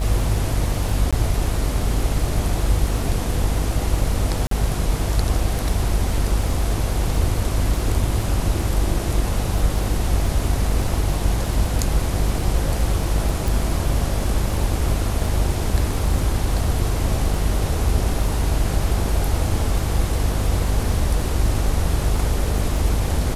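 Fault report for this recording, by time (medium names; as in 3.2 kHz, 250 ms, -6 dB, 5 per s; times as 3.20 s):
buzz 50 Hz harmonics 31 -24 dBFS
crackle 37 per s -28 dBFS
1.11–1.13 s: dropout 16 ms
4.47–4.51 s: dropout 43 ms
13.48 s: pop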